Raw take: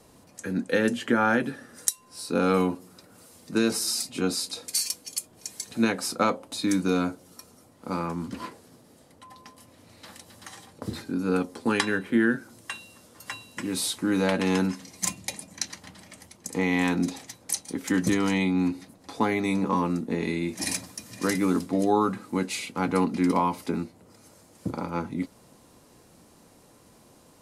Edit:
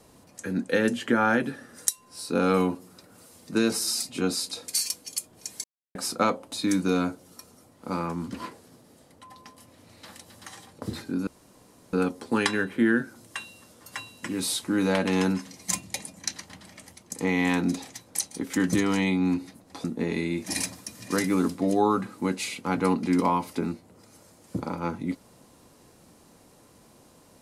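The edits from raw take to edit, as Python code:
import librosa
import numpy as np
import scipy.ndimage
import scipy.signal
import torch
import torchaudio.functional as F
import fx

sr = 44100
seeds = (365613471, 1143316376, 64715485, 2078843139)

y = fx.edit(x, sr, fx.silence(start_s=5.64, length_s=0.31),
    fx.insert_room_tone(at_s=11.27, length_s=0.66),
    fx.cut(start_s=19.18, length_s=0.77), tone=tone)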